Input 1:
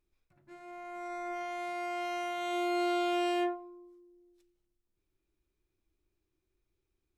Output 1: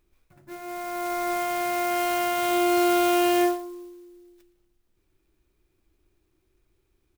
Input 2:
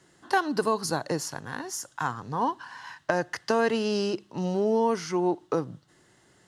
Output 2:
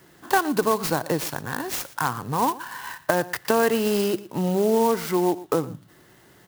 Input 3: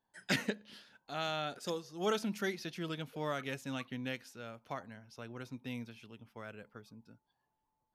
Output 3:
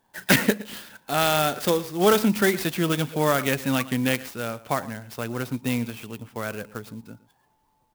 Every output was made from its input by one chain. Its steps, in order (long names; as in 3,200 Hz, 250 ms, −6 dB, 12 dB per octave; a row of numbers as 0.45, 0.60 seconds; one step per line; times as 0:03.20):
in parallel at −2 dB: downward compressor, threshold −33 dBFS
on the sum: single-tap delay 116 ms −18.5 dB
converter with an unsteady clock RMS 0.04 ms
loudness normalisation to −24 LKFS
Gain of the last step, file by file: +7.0, +2.0, +11.5 decibels